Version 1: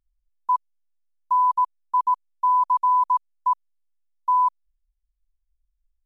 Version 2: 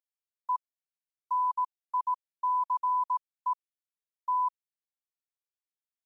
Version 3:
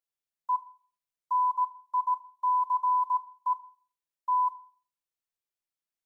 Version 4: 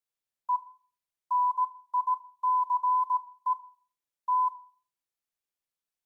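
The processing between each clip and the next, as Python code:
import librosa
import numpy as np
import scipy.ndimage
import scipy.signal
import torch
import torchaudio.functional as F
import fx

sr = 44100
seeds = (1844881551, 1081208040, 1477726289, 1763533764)

y1 = scipy.signal.sosfilt(scipy.signal.butter(2, 680.0, 'highpass', fs=sr, output='sos'), x)
y1 = y1 * librosa.db_to_amplitude(-8.0)
y2 = fx.room_shoebox(y1, sr, seeds[0], volume_m3=480.0, walls='furnished', distance_m=0.77)
y3 = fx.wow_flutter(y2, sr, seeds[1], rate_hz=2.1, depth_cents=15.0)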